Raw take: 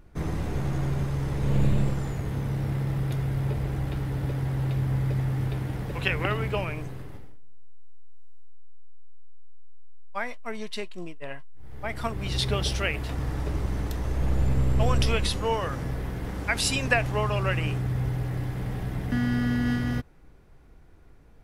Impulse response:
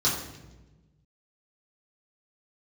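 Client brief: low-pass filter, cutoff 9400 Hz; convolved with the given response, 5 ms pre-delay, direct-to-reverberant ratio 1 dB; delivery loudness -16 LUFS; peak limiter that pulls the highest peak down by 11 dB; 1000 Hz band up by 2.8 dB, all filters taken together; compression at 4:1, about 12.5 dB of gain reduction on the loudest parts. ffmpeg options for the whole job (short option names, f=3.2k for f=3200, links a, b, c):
-filter_complex "[0:a]lowpass=9.4k,equalizer=f=1k:t=o:g=3.5,acompressor=threshold=-33dB:ratio=4,alimiter=level_in=6dB:limit=-24dB:level=0:latency=1,volume=-6dB,asplit=2[a][b];[1:a]atrim=start_sample=2205,adelay=5[c];[b][c]afir=irnorm=-1:irlink=0,volume=-13dB[d];[a][d]amix=inputs=2:normalize=0,volume=16.5dB"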